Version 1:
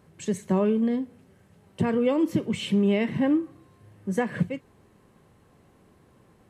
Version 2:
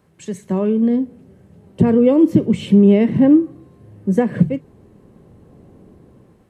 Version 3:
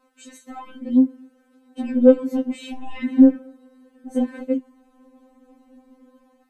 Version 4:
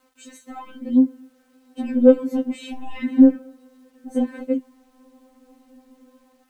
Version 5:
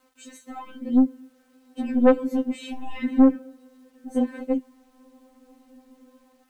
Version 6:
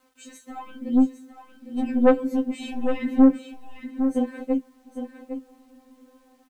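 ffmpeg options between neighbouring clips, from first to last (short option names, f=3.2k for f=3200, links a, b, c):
-filter_complex "[0:a]bandreject=f=50:t=h:w=6,bandreject=f=100:t=h:w=6,bandreject=f=150:t=h:w=6,acrossover=split=600|2300[a][b][c];[a]dynaudnorm=f=320:g=5:m=15dB[d];[d][b][c]amix=inputs=3:normalize=0"
-af "asoftclip=type=tanh:threshold=-4.5dB,afftfilt=real='re*3.46*eq(mod(b,12),0)':imag='im*3.46*eq(mod(b,12),0)':win_size=2048:overlap=0.75,volume=-1.5dB"
-af "acrusher=bits=10:mix=0:aa=0.000001"
-af "aeval=exprs='(tanh(2.82*val(0)+0.35)-tanh(0.35))/2.82':c=same"
-filter_complex "[0:a]asplit=2[a][b];[b]adelay=22,volume=-13dB[c];[a][c]amix=inputs=2:normalize=0,aecho=1:1:807:0.335"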